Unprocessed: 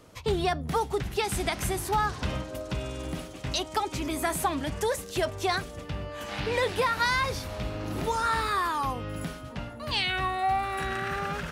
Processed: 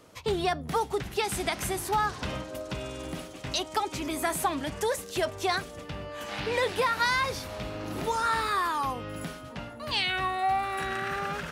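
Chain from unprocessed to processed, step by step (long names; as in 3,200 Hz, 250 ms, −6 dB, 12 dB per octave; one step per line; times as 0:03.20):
low-shelf EQ 120 Hz −9 dB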